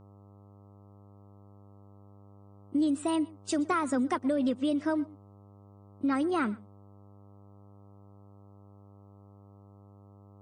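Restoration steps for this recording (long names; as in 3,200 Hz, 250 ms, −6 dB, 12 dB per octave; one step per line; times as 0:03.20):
hum removal 100.2 Hz, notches 13
echo removal 121 ms −22.5 dB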